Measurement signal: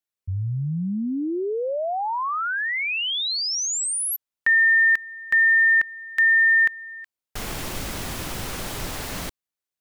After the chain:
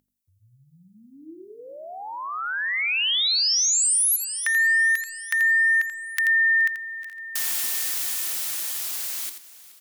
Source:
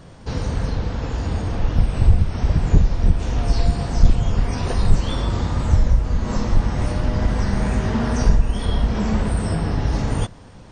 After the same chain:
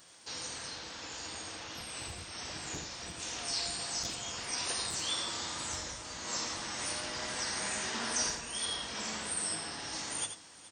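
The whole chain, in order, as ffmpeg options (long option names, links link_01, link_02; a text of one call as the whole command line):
ffmpeg -i in.wav -filter_complex "[0:a]highpass=47,equalizer=frequency=320:width_type=o:width=0.25:gain=7.5,aeval=exprs='val(0)+0.0126*(sin(2*PI*50*n/s)+sin(2*PI*2*50*n/s)/2+sin(2*PI*3*50*n/s)/3+sin(2*PI*4*50*n/s)/4+sin(2*PI*5*50*n/s)/5)':channel_layout=same,dynaudnorm=framelen=150:gausssize=31:maxgain=12dB,aderivative,asplit=2[link_01][link_02];[link_02]aecho=0:1:424|848|1272|1696|2120:0.1|0.058|0.0336|0.0195|0.0113[link_03];[link_01][link_03]amix=inputs=2:normalize=0,acompressor=threshold=-24dB:ratio=6:attack=4:release=153:knee=6:detection=peak,bandreject=frequency=50:width_type=h:width=6,bandreject=frequency=100:width_type=h:width=6,bandreject=frequency=150:width_type=h:width=6,bandreject=frequency=200:width_type=h:width=6,bandreject=frequency=250:width_type=h:width=6,bandreject=frequency=300:width_type=h:width=6,bandreject=frequency=350:width_type=h:width=6,bandreject=frequency=400:width_type=h:width=6,bandreject=frequency=450:width_type=h:width=6,asplit=2[link_04][link_05];[link_05]aecho=0:1:84:0.376[link_06];[link_04][link_06]amix=inputs=2:normalize=0,volume=3.5dB" out.wav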